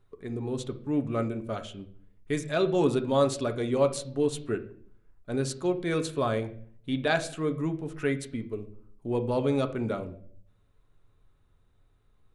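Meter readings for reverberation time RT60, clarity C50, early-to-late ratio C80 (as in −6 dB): 0.55 s, 14.0 dB, 18.0 dB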